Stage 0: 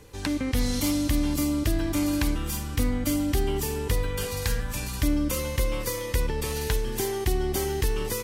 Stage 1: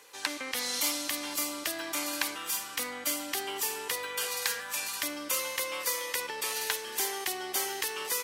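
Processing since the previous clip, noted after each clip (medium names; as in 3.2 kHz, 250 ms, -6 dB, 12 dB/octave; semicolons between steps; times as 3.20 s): high-pass 840 Hz 12 dB/octave; trim +2 dB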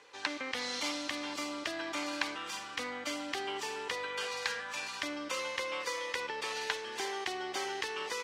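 distance through air 130 m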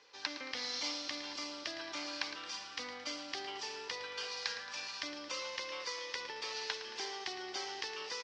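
four-pole ladder low-pass 5.8 kHz, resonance 60%; feedback delay 111 ms, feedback 57%, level -12 dB; trim +3.5 dB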